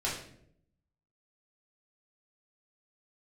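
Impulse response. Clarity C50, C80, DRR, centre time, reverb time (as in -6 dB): 4.5 dB, 8.0 dB, -6.5 dB, 39 ms, 0.70 s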